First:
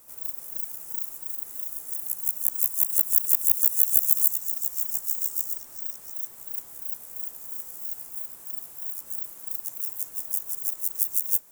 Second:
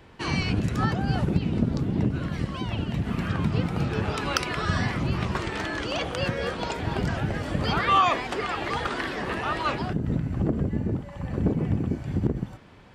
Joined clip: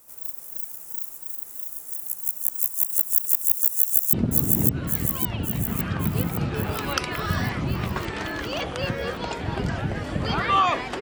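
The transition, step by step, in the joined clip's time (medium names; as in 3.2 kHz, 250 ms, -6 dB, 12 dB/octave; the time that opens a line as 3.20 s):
first
3.75–4.13 s: echo throw 560 ms, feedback 60%, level -1.5 dB
4.13 s: go over to second from 1.52 s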